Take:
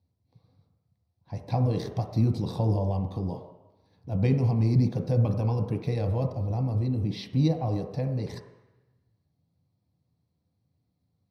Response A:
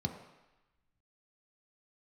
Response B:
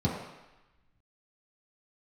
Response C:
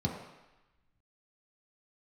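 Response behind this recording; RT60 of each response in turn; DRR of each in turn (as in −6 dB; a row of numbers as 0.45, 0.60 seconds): A; 1.0, 1.0, 1.0 seconds; 3.0, −8.0, −2.5 decibels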